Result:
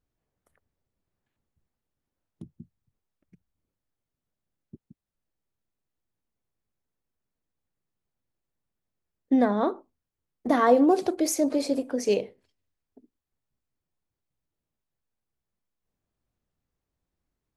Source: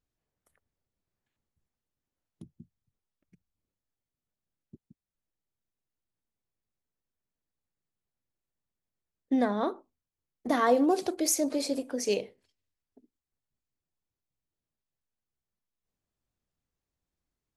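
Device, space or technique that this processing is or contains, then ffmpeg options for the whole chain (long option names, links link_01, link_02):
behind a face mask: -af "highshelf=frequency=2300:gain=-8,volume=5dB"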